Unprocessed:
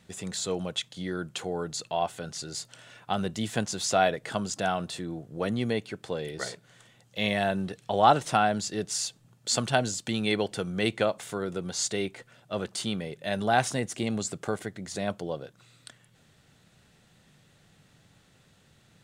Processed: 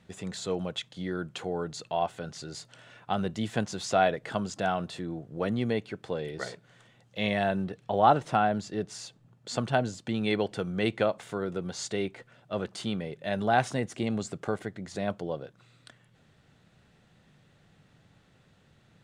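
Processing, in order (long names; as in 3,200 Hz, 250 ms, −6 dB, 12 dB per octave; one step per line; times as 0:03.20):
low-pass filter 2,800 Hz 6 dB per octave, from 0:07.64 1,500 Hz, from 0:10.21 2,600 Hz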